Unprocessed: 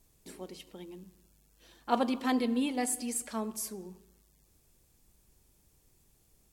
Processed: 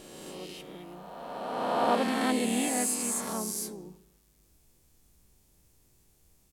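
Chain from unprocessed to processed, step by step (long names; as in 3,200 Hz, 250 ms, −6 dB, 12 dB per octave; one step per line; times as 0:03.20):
peak hold with a rise ahead of every peak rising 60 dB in 2.26 s
pitch-shifted copies added −3 semitones −7 dB, +4 semitones −14 dB
level −2.5 dB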